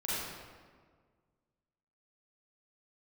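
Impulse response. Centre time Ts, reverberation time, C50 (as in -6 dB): 122 ms, 1.7 s, -4.0 dB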